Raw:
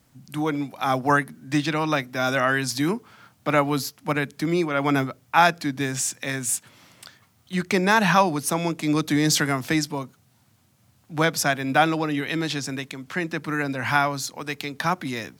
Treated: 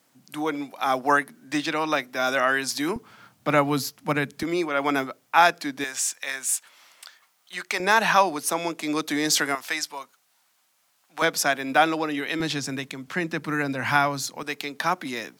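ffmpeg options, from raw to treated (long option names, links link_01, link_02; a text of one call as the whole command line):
ffmpeg -i in.wav -af "asetnsamples=nb_out_samples=441:pad=0,asendcmd='2.96 highpass f 110;4.43 highpass f 320;5.84 highpass f 770;7.8 highpass f 360;9.55 highpass f 840;11.22 highpass f 290;12.4 highpass f 120;14.43 highpass f 260',highpass=320" out.wav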